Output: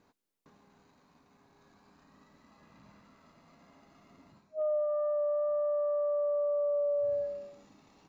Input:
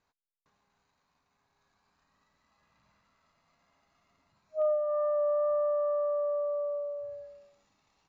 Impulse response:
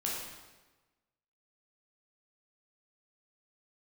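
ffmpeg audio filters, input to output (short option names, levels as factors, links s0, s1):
-af "areverse,acompressor=threshold=0.01:ratio=20,areverse,equalizer=f=270:w=0.63:g=13.5,volume=2"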